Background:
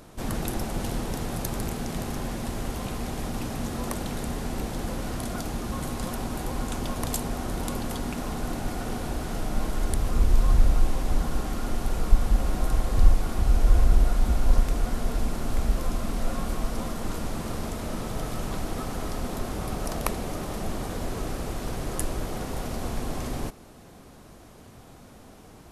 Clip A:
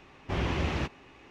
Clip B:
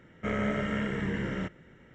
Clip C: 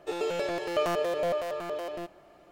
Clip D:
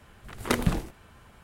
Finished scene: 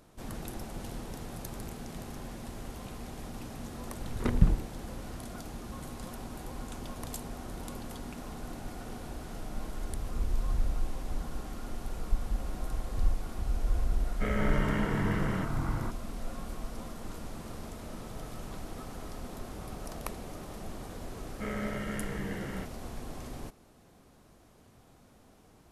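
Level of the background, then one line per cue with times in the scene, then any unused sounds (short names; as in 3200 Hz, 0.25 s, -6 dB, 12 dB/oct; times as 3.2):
background -10.5 dB
3.75 add D -10 dB + RIAA curve playback
13.97 add B -2 dB + echoes that change speed 83 ms, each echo -6 st, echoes 2
21.17 add B -6 dB
not used: A, C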